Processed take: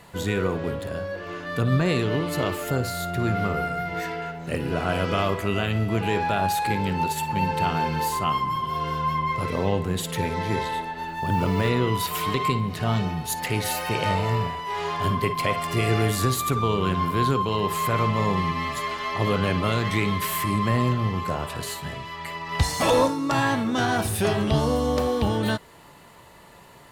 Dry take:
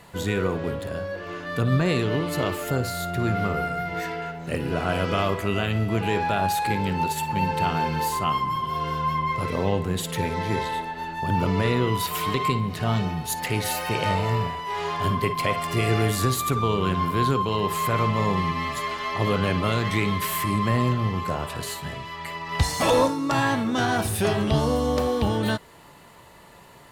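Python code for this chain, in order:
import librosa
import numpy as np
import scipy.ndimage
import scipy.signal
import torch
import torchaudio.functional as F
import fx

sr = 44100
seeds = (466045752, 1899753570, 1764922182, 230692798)

y = fx.quant_float(x, sr, bits=4, at=(11.08, 11.69))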